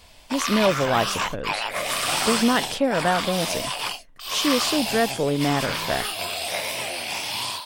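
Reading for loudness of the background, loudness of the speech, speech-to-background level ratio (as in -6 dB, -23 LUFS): -26.0 LUFS, -24.5 LUFS, 1.5 dB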